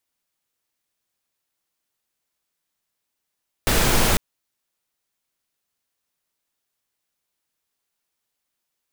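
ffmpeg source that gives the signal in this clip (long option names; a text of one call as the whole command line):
ffmpeg -f lavfi -i "anoisesrc=color=pink:amplitude=0.646:duration=0.5:sample_rate=44100:seed=1" out.wav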